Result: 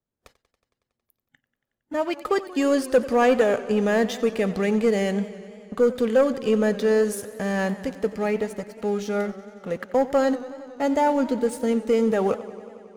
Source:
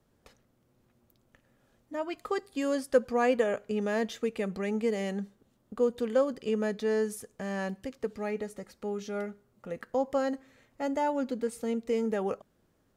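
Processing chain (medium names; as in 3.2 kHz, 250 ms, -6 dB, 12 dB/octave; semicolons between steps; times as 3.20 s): waveshaping leveller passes 2; spectral noise reduction 16 dB; modulated delay 92 ms, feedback 79%, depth 107 cents, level -17.5 dB; trim +1.5 dB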